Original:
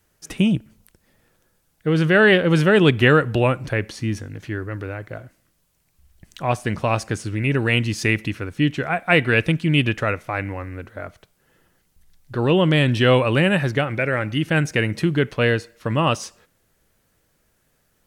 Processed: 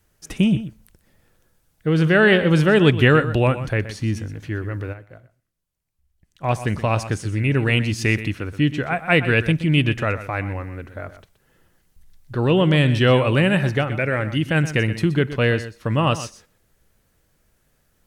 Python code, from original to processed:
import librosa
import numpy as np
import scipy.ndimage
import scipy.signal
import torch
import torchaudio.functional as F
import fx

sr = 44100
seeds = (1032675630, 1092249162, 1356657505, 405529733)

p1 = fx.low_shelf(x, sr, hz=100.0, db=7.5)
p2 = p1 + fx.echo_single(p1, sr, ms=124, db=-13.0, dry=0)
p3 = fx.upward_expand(p2, sr, threshold_db=-42.0, expansion=1.5, at=(4.92, 6.43), fade=0.02)
y = p3 * librosa.db_to_amplitude(-1.0)